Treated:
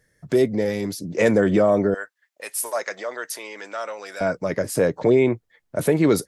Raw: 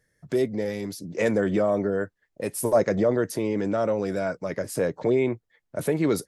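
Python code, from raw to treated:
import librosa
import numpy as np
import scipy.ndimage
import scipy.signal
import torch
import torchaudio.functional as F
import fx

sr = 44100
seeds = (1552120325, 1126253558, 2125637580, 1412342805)

y = fx.highpass(x, sr, hz=1200.0, slope=12, at=(1.94, 4.21))
y = y * 10.0 ** (5.5 / 20.0)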